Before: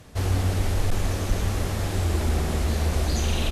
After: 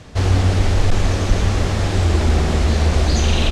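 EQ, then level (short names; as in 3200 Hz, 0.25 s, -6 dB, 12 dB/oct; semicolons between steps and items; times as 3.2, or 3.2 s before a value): air absorption 120 m; high shelf 5200 Hz +10.5 dB; +8.0 dB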